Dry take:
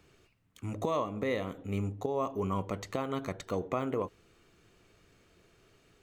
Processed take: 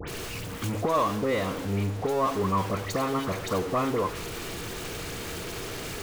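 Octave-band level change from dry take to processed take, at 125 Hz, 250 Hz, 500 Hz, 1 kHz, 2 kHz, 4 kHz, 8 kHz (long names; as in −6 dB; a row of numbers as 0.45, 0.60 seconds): +7.0, +6.0, +6.0, +9.0, +10.0, +13.0, +16.0 decibels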